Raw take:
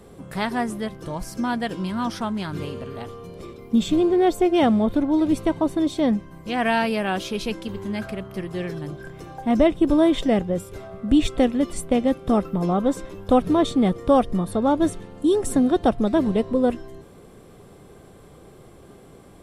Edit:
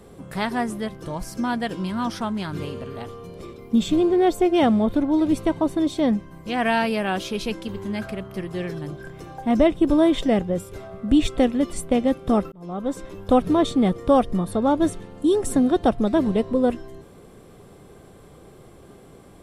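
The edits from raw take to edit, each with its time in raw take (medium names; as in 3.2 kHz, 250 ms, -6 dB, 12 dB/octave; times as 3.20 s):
12.52–13.15 s: fade in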